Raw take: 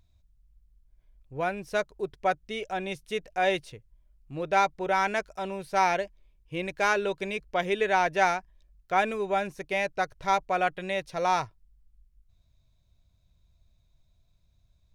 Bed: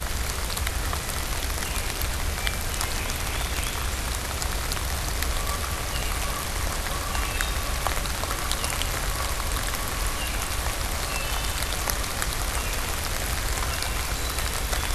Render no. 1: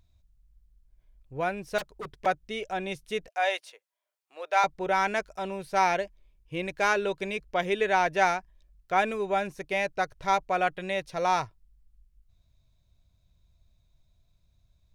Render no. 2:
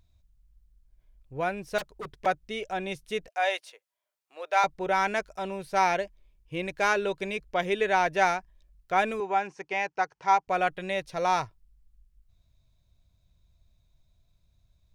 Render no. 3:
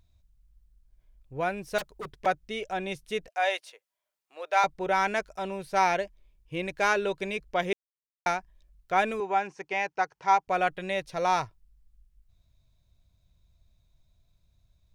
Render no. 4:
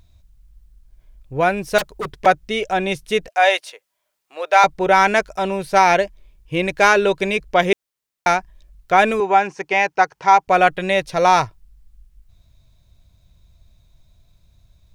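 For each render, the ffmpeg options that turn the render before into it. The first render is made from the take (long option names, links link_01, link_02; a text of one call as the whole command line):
ffmpeg -i in.wav -filter_complex "[0:a]asettb=1/sr,asplit=3[link_01][link_02][link_03];[link_01]atrim=end=1.784[link_04];[link_02]atrim=start=1.78:end=2.26,asetpts=PTS-STARTPTS,afade=type=in:duration=0.004:curve=qsin,afade=type=out:start_time=0.476:duration=0.004:curve=qsin,aeval=exprs='0.0299*(abs(mod(val(0)/0.0299+3,4)-2)-1)':channel_layout=same[link_05];[link_03]atrim=start=2.256[link_06];[link_04][link_05]acrossfade=duration=0.004:curve1=hsin:curve2=qsin[link_07];[link_07][link_06]acrossfade=duration=0.004:curve1=qsin:curve2=hsin,asettb=1/sr,asplit=3[link_08][link_09][link_10];[link_08]atrim=end=3.284[link_11];[link_09]atrim=start=3.28:end=4.64,asetpts=PTS-STARTPTS,afade=type=in:duration=0.004:curve=qsin,afade=type=out:start_time=1.356:duration=0.004:curve=qsin,highpass=frequency=570:width=0.5412,highpass=frequency=570:width=1.3066[link_12];[link_10]atrim=start=4.636[link_13];[link_11][link_12]acrossfade=duration=0.004:curve1=hsin:curve2=qsin[link_14];[link_14][link_13]acrossfade=duration=0.004:curve1=qsin:curve2=hsin" out.wav
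ffmpeg -i in.wav -filter_complex "[0:a]asettb=1/sr,asplit=3[link_01][link_02][link_03];[link_01]atrim=end=9.204[link_04];[link_02]atrim=start=9.2:end=10.48,asetpts=PTS-STARTPTS,afade=type=in:duration=0.004:curve=qsin,afade=type=out:start_time=1.276:duration=0.004:curve=qsin,highpass=240,equalizer=frequency=250:width_type=q:width=4:gain=-9,equalizer=frequency=600:width_type=q:width=4:gain=-8,equalizer=frequency=860:width_type=q:width=4:gain=9,equalizer=frequency=3800:width_type=q:width=4:gain=-9,lowpass=frequency=6700:width=0.5412,lowpass=frequency=6700:width=1.3066[link_05];[link_03]atrim=start=10.476[link_06];[link_04][link_05]acrossfade=duration=0.004:curve1=hsin:curve2=qsin[link_07];[link_07][link_06]acrossfade=duration=0.004:curve1=qsin:curve2=hsin" out.wav
ffmpeg -i in.wav -filter_complex "[0:a]asettb=1/sr,asplit=3[link_01][link_02][link_03];[link_01]atrim=end=1.504[link_04];[link_02]atrim=start=1.5:end=2.11,asetpts=PTS-STARTPTS,afade=type=in:duration=0.004:curve=qsin,afade=type=out:start_time=0.606:duration=0.004:curve=qsin,highshelf=frequency=8100:gain=4[link_05];[link_03]atrim=start=2.106[link_06];[link_04][link_05]acrossfade=duration=0.004:curve1=hsin:curve2=qsin[link_07];[link_07][link_06]acrossfade=duration=0.004:curve1=qsin:curve2=hsin,asplit=3[link_08][link_09][link_10];[link_08]atrim=end=7.73,asetpts=PTS-STARTPTS,afade=type=out:start_time=7.726:duration=0.004:curve=hsin[link_11];[link_09]atrim=start=7.73:end=8.26,asetpts=PTS-STARTPTS,volume=0[link_12];[link_10]atrim=start=8.26,asetpts=PTS-STARTPTS,afade=type=in:duration=0.004:curve=hsin[link_13];[link_11][link_12][link_13]concat=n=3:v=0:a=1" out.wav
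ffmpeg -i in.wav -af "volume=12dB,alimiter=limit=-2dB:level=0:latency=1" out.wav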